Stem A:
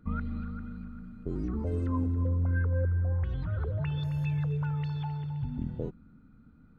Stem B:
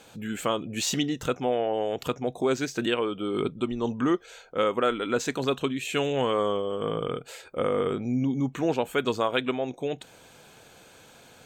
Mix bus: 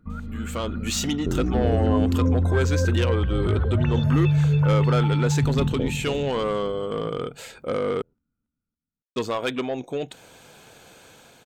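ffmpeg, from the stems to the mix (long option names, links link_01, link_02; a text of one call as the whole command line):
ffmpeg -i stem1.wav -i stem2.wav -filter_complex "[0:a]volume=-1dB,asplit=2[link_01][link_02];[link_02]volume=-7dB[link_03];[1:a]asoftclip=type=tanh:threshold=-21.5dB,adelay=100,volume=-6dB,asplit=3[link_04][link_05][link_06];[link_04]atrim=end=8.02,asetpts=PTS-STARTPTS,afade=type=out:start_time=8.016:duration=0.004:curve=hsin[link_07];[link_05]atrim=start=8.02:end=9.16,asetpts=PTS-STARTPTS,volume=0[link_08];[link_06]atrim=start=9.16,asetpts=PTS-STARTPTS,afade=type=in:duration=0.004:curve=hsin[link_09];[link_07][link_08][link_09]concat=n=3:v=0:a=1[link_10];[link_03]aecho=0:1:280|560|840|1120|1400|1680|1960|2240:1|0.56|0.314|0.176|0.0983|0.0551|0.0308|0.0173[link_11];[link_01][link_10][link_11]amix=inputs=3:normalize=0,dynaudnorm=framelen=230:gausssize=5:maxgain=9dB" out.wav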